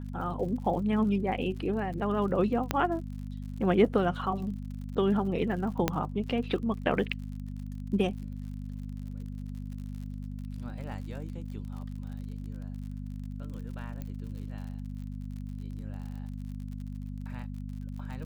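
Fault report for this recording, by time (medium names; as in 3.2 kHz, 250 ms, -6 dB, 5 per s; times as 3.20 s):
crackle 60 per s -41 dBFS
hum 50 Hz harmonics 5 -38 dBFS
2.71 s: pop -11 dBFS
5.88 s: pop -10 dBFS
14.02 s: pop -26 dBFS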